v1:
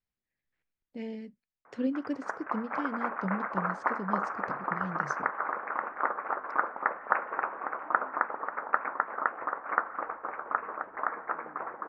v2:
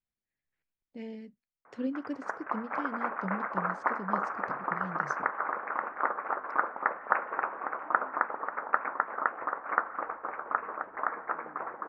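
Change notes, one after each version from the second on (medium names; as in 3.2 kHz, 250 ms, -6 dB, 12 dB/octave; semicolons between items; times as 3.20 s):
speech -3.0 dB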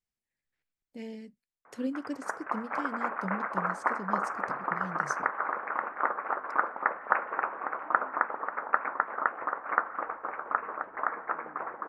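master: remove distance through air 160 m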